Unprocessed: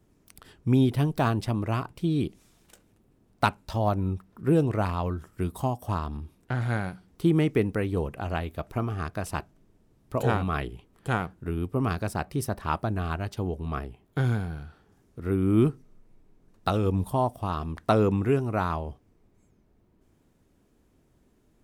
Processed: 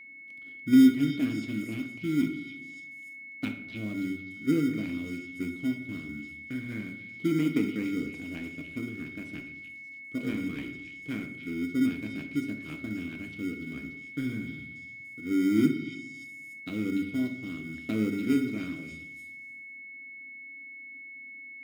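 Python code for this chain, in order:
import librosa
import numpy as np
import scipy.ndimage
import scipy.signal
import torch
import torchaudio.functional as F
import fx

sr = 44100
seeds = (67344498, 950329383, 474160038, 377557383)

p1 = fx.vowel_filter(x, sr, vowel='i')
p2 = fx.sample_hold(p1, sr, seeds[0], rate_hz=1700.0, jitter_pct=0)
p3 = p1 + (p2 * librosa.db_to_amplitude(-7.5))
p4 = p3 + 10.0 ** (-50.0 / 20.0) * np.sin(2.0 * np.pi * 2200.0 * np.arange(len(p3)) / sr)
p5 = fx.echo_stepped(p4, sr, ms=291, hz=3400.0, octaves=0.7, feedback_pct=70, wet_db=-5.0)
p6 = fx.room_shoebox(p5, sr, seeds[1], volume_m3=230.0, walls='mixed', distance_m=0.57)
y = p6 * librosa.db_to_amplitude(3.5)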